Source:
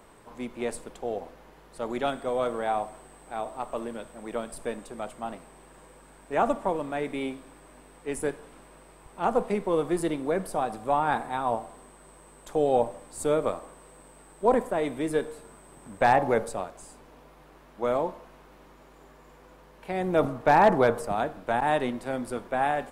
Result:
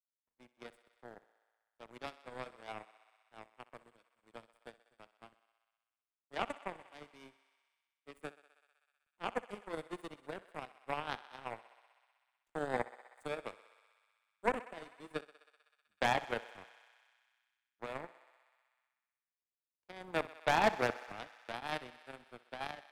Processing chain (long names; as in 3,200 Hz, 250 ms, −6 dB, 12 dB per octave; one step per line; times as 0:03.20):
power curve on the samples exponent 3
feedback echo with a high-pass in the loop 63 ms, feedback 76%, high-pass 390 Hz, level −17 dB
multiband upward and downward compressor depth 40%
level −1.5 dB